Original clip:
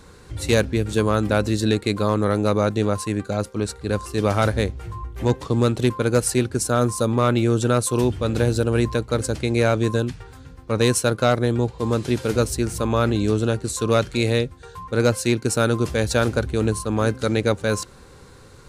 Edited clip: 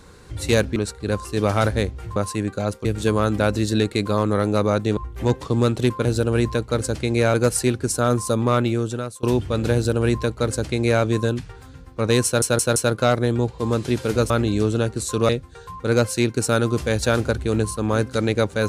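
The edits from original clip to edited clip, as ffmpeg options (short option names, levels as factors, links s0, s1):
-filter_complex "[0:a]asplit=13[s0][s1][s2][s3][s4][s5][s6][s7][s8][s9][s10][s11][s12];[s0]atrim=end=0.762[s13];[s1]atrim=start=3.568:end=4.972[s14];[s2]atrim=start=2.878:end=3.572[s15];[s3]atrim=start=0.758:end=2.882[s16];[s4]atrim=start=4.968:end=6.052[s17];[s5]atrim=start=8.448:end=9.742[s18];[s6]atrim=start=6.048:end=7.94,asetpts=PTS-STARTPTS,afade=t=out:st=1.202:d=0.69:silence=0.0630957[s19];[s7]atrim=start=7.94:end=11.132,asetpts=PTS-STARTPTS,afade=t=in:d=0.004:c=hsin:silence=0.0630957[s20];[s8]atrim=start=10.958:end=11.132[s21];[s9]atrim=start=10.958:end=11.132[s22];[s10]atrim=start=10.958:end=12.502[s23];[s11]atrim=start=12.978:end=13.972[s24];[s12]atrim=start=14.368[s25];[s13][s14]acrossfade=d=0.004:c1=hsin:c2=hsin[s26];[s26][s15]acrossfade=d=0.004:c1=hsin:c2=hsin[s27];[s27][s16]acrossfade=d=0.004:c1=hsin:c2=hsin[s28];[s28][s17]acrossfade=d=0.004:c1=hsin:c2=hsin[s29];[s29][s18]acrossfade=d=0.004:c1=hsin:c2=hsin[s30];[s19][s20]concat=n=2:v=0:a=1[s31];[s30][s31]acrossfade=d=0.004:c1=hsin:c2=hsin[s32];[s32][s21]acrossfade=d=0.004:c1=hsin:c2=hsin[s33];[s33][s22]acrossfade=d=0.004:c1=hsin:c2=hsin[s34];[s34][s23]acrossfade=d=0.004:c1=hsin:c2=hsin[s35];[s35][s24]acrossfade=d=0.004:c1=hsin:c2=hsin[s36];[s36][s25]acrossfade=d=0.004:c1=hsin:c2=hsin"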